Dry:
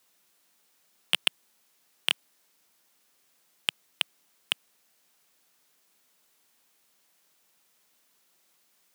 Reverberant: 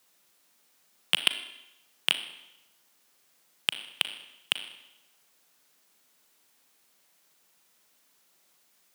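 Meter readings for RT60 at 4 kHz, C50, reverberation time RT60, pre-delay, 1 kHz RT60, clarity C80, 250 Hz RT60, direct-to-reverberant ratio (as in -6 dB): 0.85 s, 11.0 dB, 0.90 s, 36 ms, 0.90 s, 13.0 dB, 0.90 s, 9.0 dB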